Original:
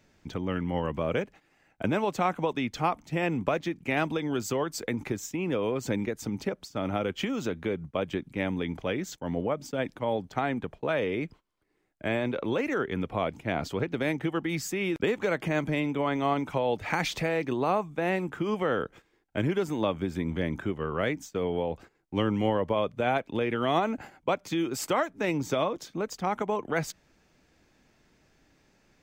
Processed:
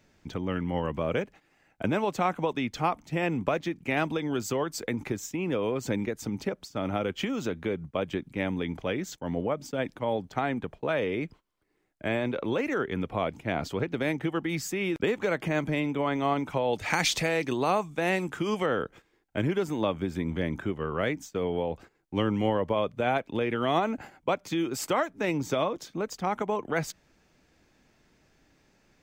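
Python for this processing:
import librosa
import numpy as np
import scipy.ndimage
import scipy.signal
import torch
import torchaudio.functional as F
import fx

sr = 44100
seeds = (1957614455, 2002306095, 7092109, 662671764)

y = fx.peak_eq(x, sr, hz=7600.0, db=10.0, octaves=2.5, at=(16.73, 18.66))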